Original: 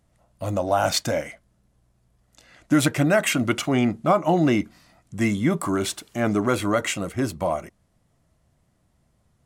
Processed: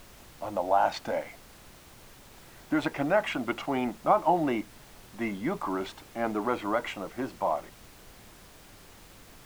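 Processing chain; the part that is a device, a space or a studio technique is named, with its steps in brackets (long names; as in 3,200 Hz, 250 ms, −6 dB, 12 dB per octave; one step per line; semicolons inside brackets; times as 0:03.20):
horn gramophone (band-pass filter 230–3,000 Hz; parametric band 870 Hz +11 dB 0.51 octaves; tape wow and flutter; pink noise bed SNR 20 dB)
level −7.5 dB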